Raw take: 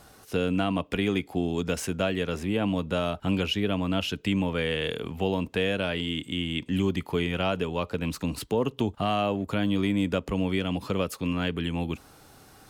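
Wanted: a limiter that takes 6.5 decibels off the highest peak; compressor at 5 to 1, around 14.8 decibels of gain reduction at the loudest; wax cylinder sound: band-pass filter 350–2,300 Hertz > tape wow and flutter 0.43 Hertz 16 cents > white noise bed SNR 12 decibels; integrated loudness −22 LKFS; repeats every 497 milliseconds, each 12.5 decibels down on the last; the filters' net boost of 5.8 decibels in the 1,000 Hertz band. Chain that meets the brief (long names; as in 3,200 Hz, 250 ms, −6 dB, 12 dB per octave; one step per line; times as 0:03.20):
parametric band 1,000 Hz +8.5 dB
downward compressor 5 to 1, threshold −37 dBFS
brickwall limiter −30 dBFS
band-pass filter 350–2,300 Hz
repeating echo 497 ms, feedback 24%, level −12.5 dB
tape wow and flutter 0.43 Hz 16 cents
white noise bed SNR 12 dB
level +22.5 dB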